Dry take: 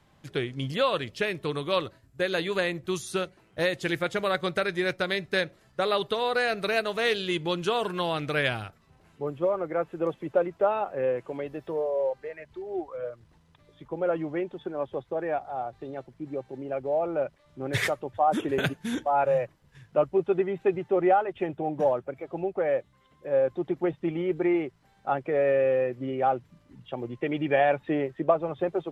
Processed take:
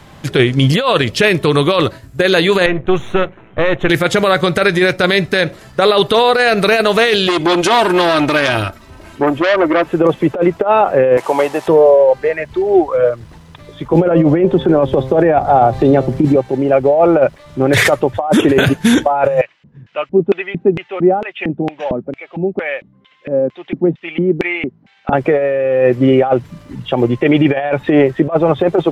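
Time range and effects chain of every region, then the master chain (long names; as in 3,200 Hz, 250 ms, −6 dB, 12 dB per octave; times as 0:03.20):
0:02.66–0:03.90: gain on one half-wave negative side −12 dB + Butterworth band-reject 4,800 Hz, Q 1.9 + high-frequency loss of the air 290 metres
0:07.27–0:09.86: comb filter 3.2 ms, depth 63% + saturating transformer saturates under 2,500 Hz
0:11.17–0:11.68: linear delta modulator 64 kbit/s, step −50.5 dBFS + high-pass filter 590 Hz 6 dB per octave + parametric band 890 Hz +11.5 dB 0.64 octaves
0:13.93–0:16.36: low-shelf EQ 370 Hz +10 dB + hum removal 131.5 Hz, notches 9 + multiband upward and downward compressor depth 70%
0:19.41–0:25.13: low-pass filter 7,500 Hz 24 dB per octave + auto-filter band-pass square 2.2 Hz 220–2,600 Hz
whole clip: compressor whose output falls as the input rises −27 dBFS, ratio −0.5; boost into a limiter +21 dB; level −1 dB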